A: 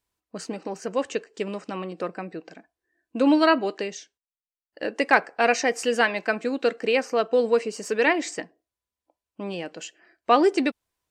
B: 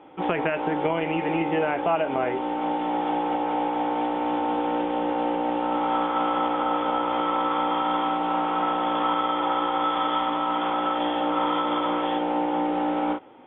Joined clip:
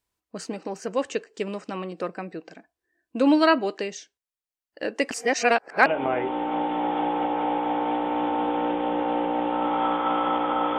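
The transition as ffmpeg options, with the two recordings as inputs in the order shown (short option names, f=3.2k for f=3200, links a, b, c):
-filter_complex "[0:a]apad=whole_dur=10.78,atrim=end=10.78,asplit=2[a][b];[a]atrim=end=5.112[c];[b]atrim=start=5.108:end=5.862,asetpts=PTS-STARTPTS,areverse[d];[1:a]atrim=start=1.958:end=6.88[e];[c][d]acrossfade=d=0.004:c1=hsin:c2=hsin[f];[f][e]acrossfade=d=0.004:c1=hsin:c2=hsin"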